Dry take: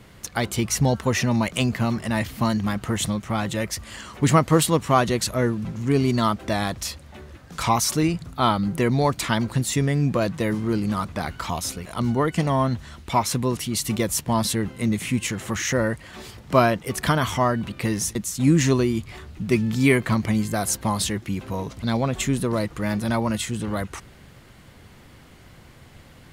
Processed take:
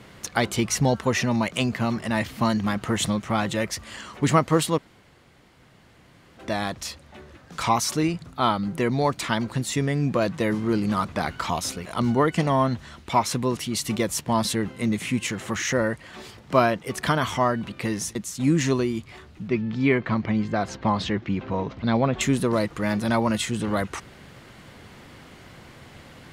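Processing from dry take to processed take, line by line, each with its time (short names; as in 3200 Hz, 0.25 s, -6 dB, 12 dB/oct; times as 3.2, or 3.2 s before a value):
4.78–6.37 room tone
19.48–22.21 air absorption 210 m
whole clip: low shelf 94 Hz -11 dB; vocal rider 2 s; high shelf 9400 Hz -9.5 dB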